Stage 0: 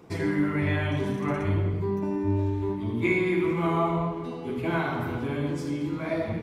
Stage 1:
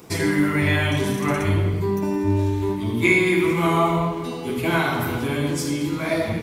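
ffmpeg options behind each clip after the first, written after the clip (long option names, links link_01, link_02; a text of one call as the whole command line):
ffmpeg -i in.wav -af "crystalizer=i=4:c=0,volume=5dB" out.wav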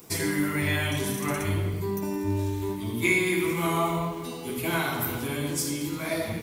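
ffmpeg -i in.wav -af "aemphasis=mode=production:type=50kf,volume=-7dB" out.wav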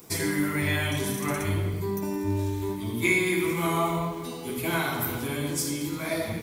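ffmpeg -i in.wav -af "bandreject=frequency=2800:width=20" out.wav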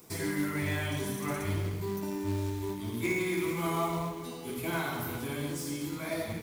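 ffmpeg -i in.wav -filter_complex "[0:a]acrossover=split=1700[link_01][link_02];[link_01]acrusher=bits=4:mode=log:mix=0:aa=0.000001[link_03];[link_02]asoftclip=type=tanh:threshold=-33dB[link_04];[link_03][link_04]amix=inputs=2:normalize=0,volume=-5dB" out.wav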